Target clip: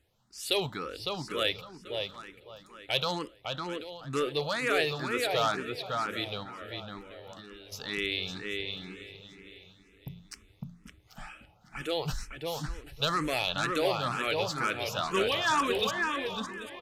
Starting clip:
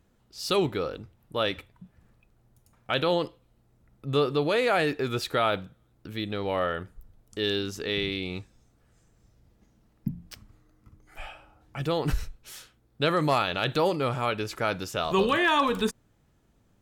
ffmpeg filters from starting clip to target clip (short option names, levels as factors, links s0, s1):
-filter_complex "[0:a]aeval=exprs='0.15*(abs(mod(val(0)/0.15+3,4)-2)-1)':c=same,asplit=2[s0][s1];[s1]aecho=0:1:787|1574|2361:0.188|0.0452|0.0108[s2];[s0][s2]amix=inputs=2:normalize=0,crystalizer=i=9.5:c=0,asettb=1/sr,asplit=3[s3][s4][s5];[s3]atrim=end=6.434[s6];[s4]atrim=start=6.43:end=7.72,asetpts=PTS-STARTPTS,afade=t=in:d=0.004:c=qsin,afade=t=out:st=1.286:d=0.004:c=qsin,acompressor=threshold=0.0178:ratio=5[s7];[s5]atrim=start=7.716[s8];[s6][s7]acrossfade=d=0.004:c1=hsin:c2=qsin[s9];[s9][s8]acrossfade=d=0.004:c1=qsin:c2=hsin,asplit=2[s10][s11];[s11]adelay=556,lowpass=f=2700:p=1,volume=0.708,asplit=2[s12][s13];[s13]adelay=556,lowpass=f=2700:p=1,volume=0.23,asplit=2[s14][s15];[s15]adelay=556,lowpass=f=2700:p=1,volume=0.23[s16];[s12][s14][s16]amix=inputs=3:normalize=0[s17];[s10][s17]amix=inputs=2:normalize=0,aresample=32000,aresample=44100,aemphasis=mode=reproduction:type=75kf,asplit=2[s18][s19];[s19]afreqshift=2.1[s20];[s18][s20]amix=inputs=2:normalize=1,volume=0.562"